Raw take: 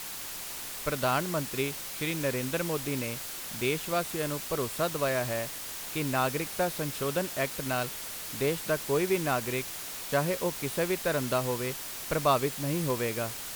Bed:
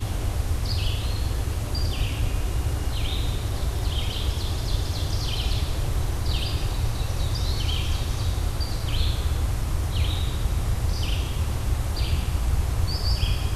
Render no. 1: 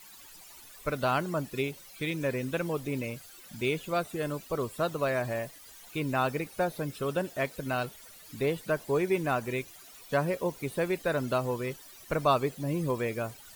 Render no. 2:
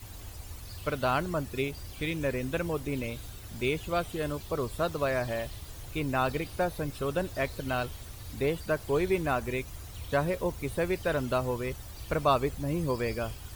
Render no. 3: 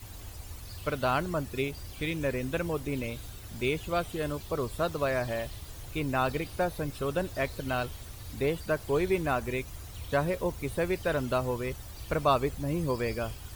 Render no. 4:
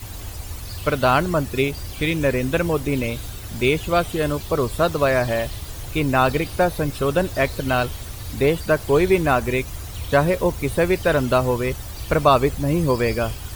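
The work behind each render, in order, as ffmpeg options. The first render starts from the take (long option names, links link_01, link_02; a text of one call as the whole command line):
ffmpeg -i in.wav -af "afftdn=noise_reduction=16:noise_floor=-39" out.wav
ffmpeg -i in.wav -i bed.wav -filter_complex "[1:a]volume=-18.5dB[link_01];[0:a][link_01]amix=inputs=2:normalize=0" out.wav
ffmpeg -i in.wav -af anull out.wav
ffmpeg -i in.wav -af "volume=10.5dB,alimiter=limit=-3dB:level=0:latency=1" out.wav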